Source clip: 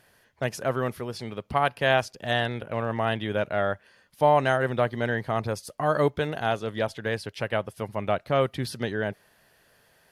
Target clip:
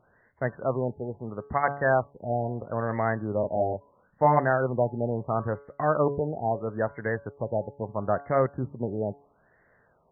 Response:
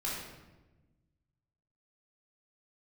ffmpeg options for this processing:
-filter_complex "[0:a]asettb=1/sr,asplit=3[a][b][c];[a]atrim=end=3.404[d];[b]atrim=start=3.4:end=4.39,asetpts=PTS-STARTPTS,afade=t=in:d=0.004:c=qsin,afade=t=out:st=0.986:d=0.004:c=qsin,asplit=2[e][f];[f]adelay=33,volume=-2.5dB[g];[e][g]amix=inputs=2:normalize=0,atrim=end_sample=43659[h];[c]atrim=start=4.386[i];[d][h]acrossfade=d=0.004:c1=hsin:c2=qsin[j];[j][i]acrossfade=d=0.004:c1=qsin:c2=hsin,bandreject=f=141.7:t=h:w=4,bandreject=f=283.4:t=h:w=4,bandreject=f=425.1:t=h:w=4,bandreject=f=566.8:t=h:w=4,bandreject=f=708.5:t=h:w=4,bandreject=f=850.2:t=h:w=4,bandreject=f=991.9:t=h:w=4,bandreject=f=1.1336k:t=h:w=4,bandreject=f=1.2753k:t=h:w=4,bandreject=f=1.417k:t=h:w=4,bandreject=f=1.5587k:t=h:w=4,afftfilt=real='re*lt(b*sr/1024,890*pow(2200/890,0.5+0.5*sin(2*PI*0.75*pts/sr)))':imag='im*lt(b*sr/1024,890*pow(2200/890,0.5+0.5*sin(2*PI*0.75*pts/sr)))':win_size=1024:overlap=0.75"

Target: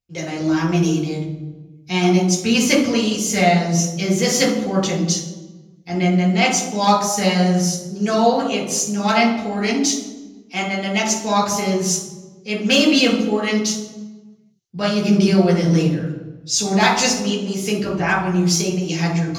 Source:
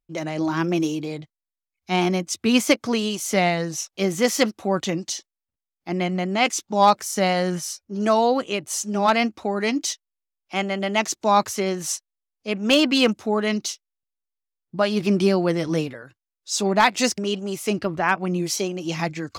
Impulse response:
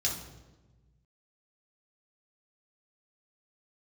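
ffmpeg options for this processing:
-filter_complex "[1:a]atrim=start_sample=2205[a];[0:a][a]afir=irnorm=-1:irlink=0,volume=-2.5dB"

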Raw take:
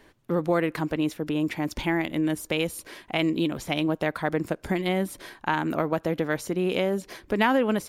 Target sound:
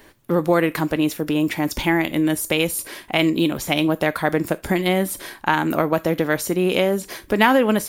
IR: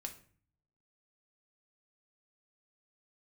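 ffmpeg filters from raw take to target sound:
-filter_complex "[0:a]asplit=2[a][b];[b]aemphasis=mode=production:type=riaa[c];[1:a]atrim=start_sample=2205,atrim=end_sample=3969[d];[c][d]afir=irnorm=-1:irlink=0,volume=-6.5dB[e];[a][e]amix=inputs=2:normalize=0,volume=5dB"

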